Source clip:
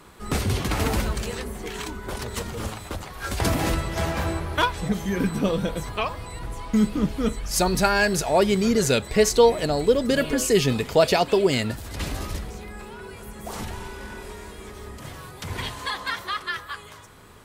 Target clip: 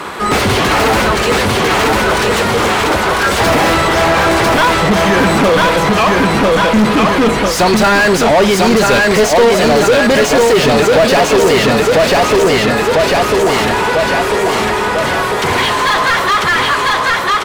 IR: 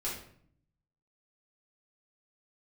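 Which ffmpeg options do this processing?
-filter_complex "[0:a]aecho=1:1:997|1994|2991|3988|4985|5982:0.668|0.294|0.129|0.0569|0.0251|0.011,asplit=2[a][b];[b]highpass=f=720:p=1,volume=34dB,asoftclip=type=tanh:threshold=-5dB[c];[a][c]amix=inputs=2:normalize=0,lowpass=f=2k:p=1,volume=-6dB,volume=3dB"

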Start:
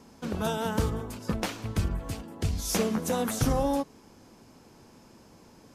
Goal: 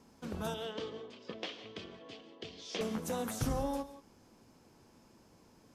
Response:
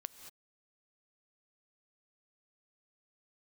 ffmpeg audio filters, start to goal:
-filter_complex "[0:a]asettb=1/sr,asplit=3[a][b][c];[a]atrim=end=0.544[d];[b]atrim=start=0.54:end=2.81,asetpts=PTS-STARTPTS,afade=t=in:d=0.004:c=qsin,afade=t=out:st=2.266:d=0.004:c=qsin,highpass=350,equalizer=f=420:t=q:w=4:g=4,equalizer=f=880:t=q:w=4:g=-9,equalizer=f=1.4k:t=q:w=4:g=-8,equalizer=f=3.2k:t=q:w=4:g=9,lowpass=f=4.9k:w=0.5412,lowpass=f=4.9k:w=1.3066[e];[c]atrim=start=2.806[f];[d][e]acrossfade=d=0.004:c1=hsin:c2=qsin[g];[g][f]acrossfade=d=0.004:c1=qsin:c2=hsin[h];[1:a]atrim=start_sample=2205,afade=t=out:st=0.23:d=0.01,atrim=end_sample=10584[i];[h][i]afir=irnorm=-1:irlink=0,volume=-4dB"

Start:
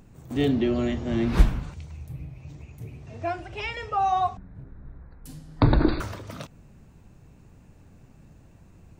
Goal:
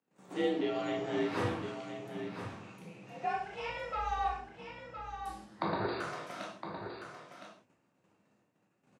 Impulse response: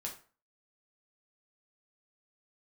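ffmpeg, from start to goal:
-filter_complex "[0:a]agate=range=-26dB:threshold=-48dB:ratio=16:detection=peak,highpass=f=810:p=1,highshelf=f=4.3k:g=-10,acrossover=split=1500|4300[a][b][c];[a]acompressor=threshold=-33dB:ratio=4[d];[b]acompressor=threshold=-49dB:ratio=4[e];[c]acompressor=threshold=-56dB:ratio=4[f];[d][e][f]amix=inputs=3:normalize=0,asettb=1/sr,asplit=3[g][h][i];[g]atrim=end=3.334[j];[h]atrim=start=3.33:end=5.47,asetpts=PTS-STARTPTS,afade=t=in:d=0.004:c=qsin,afade=t=out:st=2.136:d=0.004:c=qsin,aeval=exprs='(tanh(28.2*val(0)+0.45)-tanh(0.45))/28.2':c=same[k];[i]atrim=start=5.466[l];[j][k]acrossfade=d=0.004:c1=hsin:c2=qsin[m];[m][l]acrossfade=d=0.004:c1=qsin:c2=hsin,afreqshift=54,aecho=1:1:1013:0.376[n];[1:a]atrim=start_sample=2205,atrim=end_sample=3969,asetrate=23373,aresample=44100[o];[n][o]afir=irnorm=-1:irlink=0"

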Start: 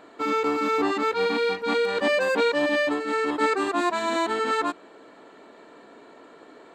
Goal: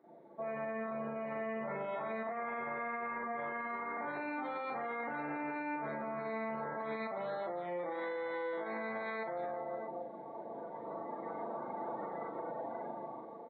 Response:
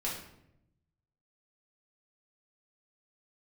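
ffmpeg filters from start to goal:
-filter_complex "[0:a]aemphasis=mode=reproduction:type=75fm,asplit=2[a][b];[b]adelay=20,volume=-5dB[c];[a][c]amix=inputs=2:normalize=0,asplit=2[d][e];[e]aecho=0:1:20|52|103.2|185.1|316.2:0.631|0.398|0.251|0.158|0.1[f];[d][f]amix=inputs=2:normalize=0,asetrate=22050,aresample=44100,dynaudnorm=f=290:g=11:m=14.5dB,afftdn=nr=18:nf=-41,highpass=770,alimiter=level_in=11dB:limit=-24dB:level=0:latency=1:release=117,volume=-11dB,volume=3dB"

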